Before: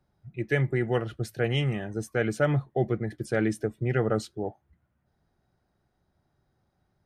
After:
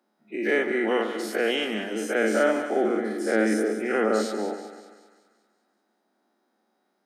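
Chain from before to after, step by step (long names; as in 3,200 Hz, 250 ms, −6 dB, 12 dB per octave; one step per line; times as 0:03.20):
every bin's largest magnitude spread in time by 120 ms
Chebyshev high-pass filter 210 Hz, order 6
echo with a time of its own for lows and highs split 1,100 Hz, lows 132 ms, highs 192 ms, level −10 dB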